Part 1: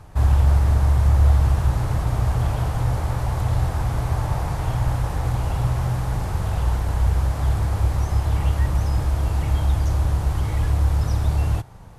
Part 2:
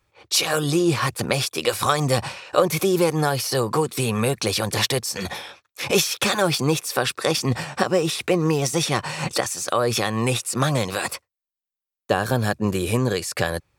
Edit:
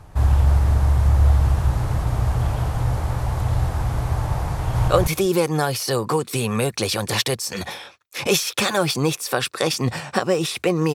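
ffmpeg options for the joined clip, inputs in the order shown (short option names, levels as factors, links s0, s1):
-filter_complex "[0:a]apad=whole_dur=10.94,atrim=end=10.94,atrim=end=4.882[s0];[1:a]atrim=start=2.518:end=8.58[s1];[s0][s1]acrossfade=d=0.004:c1=hsin:c2=hsin,asplit=2[s2][s3];[s3]afade=t=in:st=4.55:d=0.01,afade=t=out:st=4.88:d=0.01,aecho=0:1:190|380:0.944061|0.0944061[s4];[s2][s4]amix=inputs=2:normalize=0"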